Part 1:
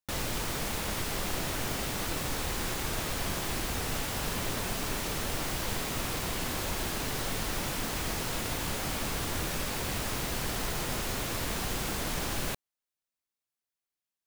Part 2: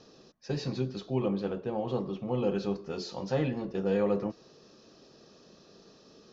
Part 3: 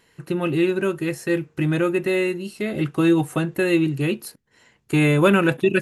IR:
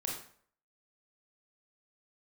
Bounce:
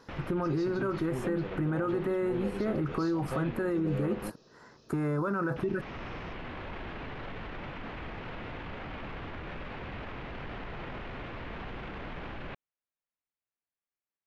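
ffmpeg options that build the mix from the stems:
-filter_complex "[0:a]lowpass=f=2.7k:w=0.5412,lowpass=f=2.7k:w=1.3066,alimiter=level_in=5.5dB:limit=-24dB:level=0:latency=1:release=10,volume=-5.5dB,volume=-3dB,asplit=3[a][b][c];[a]atrim=end=4.3,asetpts=PTS-STARTPTS,afade=t=out:st=4.296:d=0.004:c=hsin[d];[b]atrim=start=4.3:end=5.56,asetpts=PTS-STARTPTS,volume=0[e];[c]atrim=start=5.56,asetpts=PTS-STARTPTS,afade=t=in:d=0.004:c=hsin[f];[d][e][f]concat=n=3:v=0:a=1[g];[1:a]volume=22dB,asoftclip=hard,volume=-22dB,volume=-4.5dB[h];[2:a]highshelf=f=1.9k:t=q:w=3:g=-13,volume=2dB[i];[g][i]amix=inputs=2:normalize=0,alimiter=limit=-19dB:level=0:latency=1:release=38,volume=0dB[j];[h][j]amix=inputs=2:normalize=0,acompressor=threshold=-30dB:ratio=2"

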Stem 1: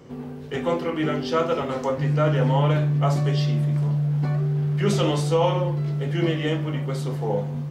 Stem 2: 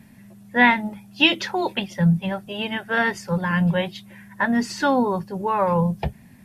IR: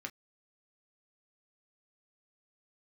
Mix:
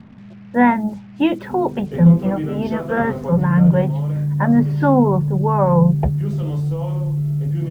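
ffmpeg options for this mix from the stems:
-filter_complex "[0:a]asubboost=boost=4:cutoff=160,acompressor=threshold=-22dB:ratio=10,tiltshelf=f=840:g=8,adelay=1400,volume=-3.5dB[a];[1:a]lowpass=1.1k,lowshelf=f=410:g=5,volume=3dB[b];[a][b]amix=inputs=2:normalize=0,acrusher=bits=7:mix=0:aa=0.5"

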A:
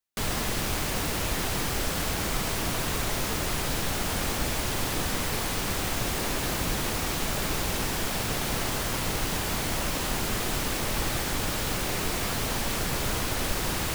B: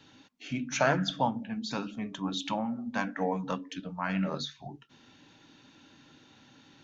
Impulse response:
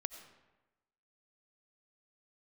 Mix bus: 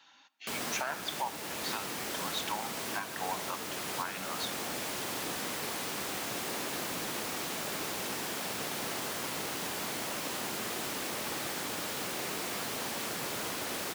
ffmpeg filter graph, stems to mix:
-filter_complex "[0:a]adelay=300,volume=-8.5dB,asplit=2[a][b];[b]volume=-7.5dB[c];[1:a]lowshelf=f=590:t=q:w=1.5:g=-13,volume=-4dB,asplit=2[d][e];[e]volume=-5.5dB[f];[2:a]atrim=start_sample=2205[g];[c][f]amix=inputs=2:normalize=0[h];[h][g]afir=irnorm=-1:irlink=0[i];[a][d][i]amix=inputs=3:normalize=0,highpass=220,alimiter=limit=-22.5dB:level=0:latency=1:release=455"

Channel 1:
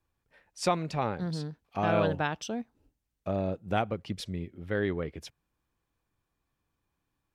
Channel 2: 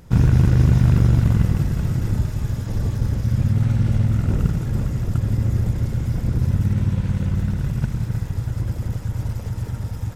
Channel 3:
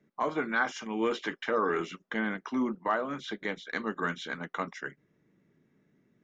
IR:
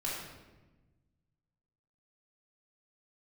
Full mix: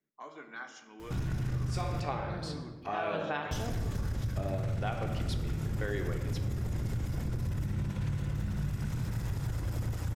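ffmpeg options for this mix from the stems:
-filter_complex "[0:a]highpass=f=450:p=1,adelay=1100,volume=-1dB,asplit=2[a][b];[b]volume=-6.5dB[c];[1:a]alimiter=limit=-12.5dB:level=0:latency=1:release=35,adelay=1000,volume=0dB,asplit=3[d][e][f];[d]atrim=end=2,asetpts=PTS-STARTPTS,afade=t=out:st=1.996:d=0.004:c=hsin[g];[e]atrim=start=2:end=3.51,asetpts=PTS-STARTPTS,volume=0[h];[f]atrim=start=3.51,asetpts=PTS-STARTPTS,afade=t=in:d=0.004:c=hsin[i];[g][h][i]concat=n=3:v=0:a=1,asplit=2[j][k];[k]volume=-16.5dB[l];[2:a]highshelf=f=5.7k:g=11.5,volume=-17.5dB,asplit=3[m][n][o];[n]volume=-10dB[p];[o]apad=whole_len=372559[q];[a][q]sidechaincompress=threshold=-53dB:ratio=8:attack=49:release=409[r];[j][m]amix=inputs=2:normalize=0,lowshelf=f=400:g=-7.5,alimiter=level_in=4.5dB:limit=-24dB:level=0:latency=1:release=17,volume=-4.5dB,volume=0dB[s];[3:a]atrim=start_sample=2205[t];[c][l][p]amix=inputs=3:normalize=0[u];[u][t]afir=irnorm=-1:irlink=0[v];[r][s][v]amix=inputs=3:normalize=0,acompressor=threshold=-29dB:ratio=6"

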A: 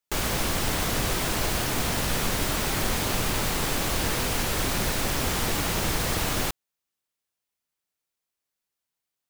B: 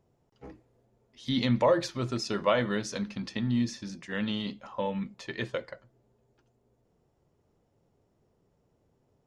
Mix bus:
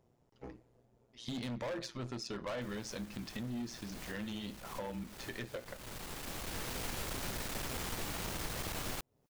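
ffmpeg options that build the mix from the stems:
-filter_complex "[0:a]aeval=exprs='clip(val(0),-1,0.0376)':c=same,adelay=2500,volume=-0.5dB[a];[1:a]tremolo=f=120:d=0.667,volume=29.5dB,asoftclip=hard,volume=-29.5dB,volume=2dB,asplit=2[b][c];[c]apad=whole_len=520237[d];[a][d]sidechaincompress=threshold=-52dB:ratio=10:attack=8.3:release=848[e];[e][b]amix=inputs=2:normalize=0,acompressor=threshold=-42dB:ratio=2.5"

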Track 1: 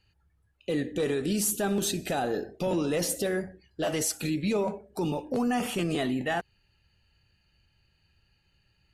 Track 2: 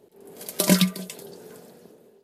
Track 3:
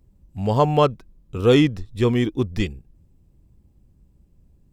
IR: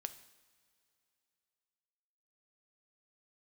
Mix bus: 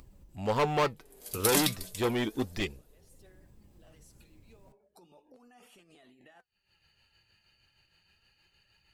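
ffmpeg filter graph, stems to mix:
-filter_complex "[0:a]acompressor=threshold=-44dB:ratio=2,alimiter=level_in=12.5dB:limit=-24dB:level=0:latency=1:release=47,volume=-12.5dB,tremolo=f=6.4:d=0.52,volume=-16dB[a];[1:a]highshelf=f=3.7k:g=9,adelay=850,volume=-6.5dB[b];[2:a]asoftclip=type=hard:threshold=-17dB,volume=2.5dB[c];[a][b][c]amix=inputs=3:normalize=0,lowshelf=f=320:g=-11,acompressor=mode=upward:threshold=-42dB:ratio=2.5,flanger=delay=0.8:depth=8.6:regen=71:speed=0.34:shape=triangular"

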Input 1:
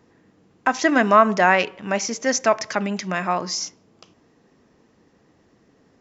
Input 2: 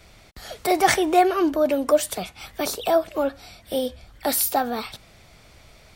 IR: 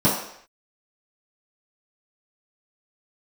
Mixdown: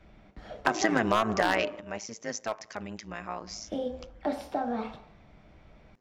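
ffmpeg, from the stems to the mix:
-filter_complex "[0:a]aeval=exprs='0.447*(abs(mod(val(0)/0.447+3,4)-2)-1)':c=same,tremolo=f=110:d=0.824,volume=3dB[a];[1:a]lowpass=2.4k,acompressor=threshold=-21dB:ratio=10,volume=-9dB,asplit=3[b][c][d];[b]atrim=end=1.67,asetpts=PTS-STARTPTS,afade=t=out:st=1.666:d=0.004:c=hsin[e];[c]atrim=start=1.67:end=3.47,asetpts=PTS-STARTPTS,volume=0[f];[d]atrim=start=3.47,asetpts=PTS-STARTPTS,afade=t=in:d=0.004:c=hsin[g];[e][f][g]concat=n=3:v=0:a=1,asplit=3[h][i][j];[i]volume=-19.5dB[k];[j]apad=whole_len=264676[l];[a][l]sidechaingate=range=-14dB:threshold=-51dB:ratio=16:detection=peak[m];[2:a]atrim=start_sample=2205[n];[k][n]afir=irnorm=-1:irlink=0[o];[m][h][o]amix=inputs=3:normalize=0,acompressor=threshold=-22dB:ratio=5"

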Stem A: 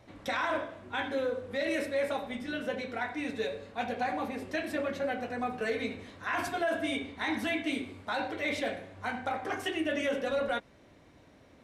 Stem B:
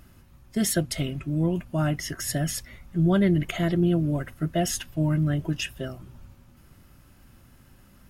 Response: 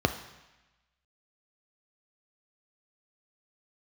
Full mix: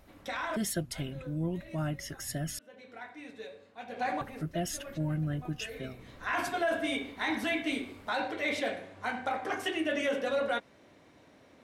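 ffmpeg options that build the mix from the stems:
-filter_complex "[0:a]highpass=f=180:p=1,acontrast=49,volume=1.5dB,afade=t=out:st=1.66:d=0.28:silence=0.473151,afade=t=in:st=3.87:d=0.21:silence=0.266073[a];[1:a]volume=-8.5dB,asplit=3[b][c][d];[b]atrim=end=2.59,asetpts=PTS-STARTPTS,afade=t=out:st=2.586:d=0.004:c=hsin[e];[c]atrim=start=2.59:end=4.21,asetpts=PTS-STARTPTS,volume=0[f];[d]atrim=start=4.21,asetpts=PTS-STARTPTS,afade=t=in:d=0.004:c=hsin[g];[e][f][g]concat=n=3:v=0:a=1,asplit=2[h][i];[i]apad=whole_len=512893[j];[a][j]sidechaincompress=threshold=-47dB:ratio=16:attack=5.5:release=373[k];[k][h]amix=inputs=2:normalize=0"

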